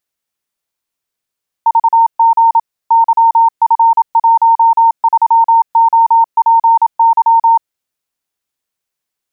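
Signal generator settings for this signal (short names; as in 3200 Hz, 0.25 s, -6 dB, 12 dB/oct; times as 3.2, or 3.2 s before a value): Morse "VG YF13OPY" 27 wpm 915 Hz -4.5 dBFS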